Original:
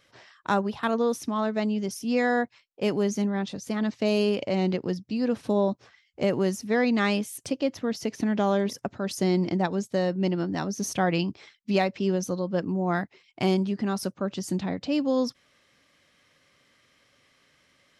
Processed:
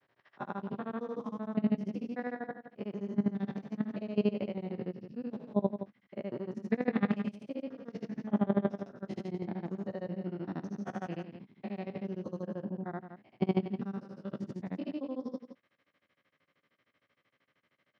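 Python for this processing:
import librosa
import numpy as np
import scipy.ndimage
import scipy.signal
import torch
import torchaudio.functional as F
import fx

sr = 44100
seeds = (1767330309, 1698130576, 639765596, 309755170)

p1 = fx.spec_steps(x, sr, hold_ms=200)
p2 = fx.dynamic_eq(p1, sr, hz=210.0, q=8.0, threshold_db=-44.0, ratio=4.0, max_db=6)
p3 = fx.granulator(p2, sr, seeds[0], grain_ms=78.0, per_s=13.0, spray_ms=19.0, spread_st=0)
p4 = fx.level_steps(p3, sr, step_db=12)
p5 = fx.bandpass_edges(p4, sr, low_hz=120.0, high_hz=2500.0)
y = p5 + fx.echo_single(p5, sr, ms=168, db=-10.0, dry=0)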